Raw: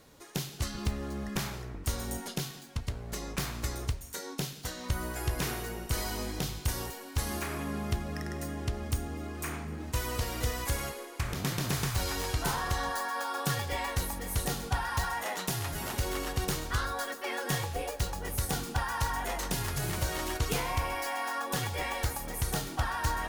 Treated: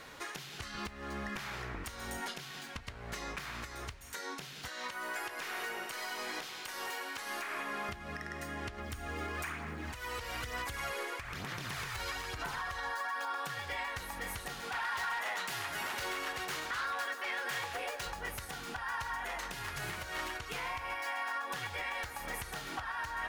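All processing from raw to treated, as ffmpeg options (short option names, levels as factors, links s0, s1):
-filter_complex "[0:a]asettb=1/sr,asplit=3[s0][s1][s2];[s0]atrim=end=4.684[s3];[s1]atrim=start=4.68:end=7.89,asetpts=PTS-STARTPTS,afade=t=in:d=0.004:c=qsin,afade=t=out:st=3.206:d=0.004:c=qsin,highpass=340,aeval=exprs='(tanh(17.8*val(0)+0.4)-tanh(0.4))/17.8':c=same[s4];[s2]atrim=start=7.886[s5];[s3][s4]acrossfade=d=0.004:c1=hsin:c2=qsin[s6];[s6][s5]acrossfade=d=0.004:c1=qsin:c2=hsin,asettb=1/sr,asplit=3[s7][s8][s9];[s7]atrim=end=8.784[s10];[s8]atrim=start=8.78:end=13.36,asetpts=PTS-STARTPTS,afade=t=in:d=0.004:c=qsin,afade=t=out:st=4.576:d=0.004:c=qsin,acompressor=threshold=0.0178:ratio=2:attack=3.2:release=140:knee=1:detection=peak,aphaser=in_gain=1:out_gain=1:delay=2.3:decay=0.38:speed=1.1:type=sinusoidal,acrusher=bits=7:mode=log:mix=0:aa=0.000001[s11];[s9]atrim=start=13.356[s12];[s10][s11]acrossfade=d=0.004:c1=hsin:c2=qsin[s13];[s13][s12]acrossfade=d=0.004:c1=qsin:c2=hsin,asettb=1/sr,asplit=3[s14][s15][s16];[s14]atrim=end=14.604[s17];[s15]atrim=start=14.6:end=18.06,asetpts=PTS-STARTPTS,afade=t=in:d=0.004:c=qsin,afade=t=out:st=3.456:d=0.004:c=qsin,highpass=f=250:p=1,aeval=exprs='0.0316*(abs(mod(val(0)/0.0316+3,4)-2)-1)':c=same[s18];[s16]atrim=start=18.056[s19];[s17][s18]acrossfade=d=0.004:c1=hsin:c2=qsin[s20];[s20][s19]acrossfade=d=0.004:c1=qsin:c2=hsin,acompressor=threshold=0.0126:ratio=6,equalizer=f=1800:t=o:w=2.8:g=14.5,alimiter=level_in=1.58:limit=0.0631:level=0:latency=1:release=442,volume=0.631"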